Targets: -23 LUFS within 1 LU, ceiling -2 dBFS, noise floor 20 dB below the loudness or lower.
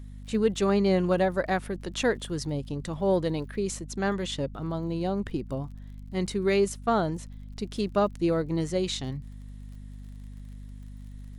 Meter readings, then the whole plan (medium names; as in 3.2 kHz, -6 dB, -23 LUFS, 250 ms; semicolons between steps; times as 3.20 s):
tick rate 43 per s; hum 50 Hz; highest harmonic 250 Hz; hum level -39 dBFS; loudness -28.5 LUFS; peak level -11.5 dBFS; loudness target -23.0 LUFS
-> de-click; hum notches 50/100/150/200/250 Hz; trim +5.5 dB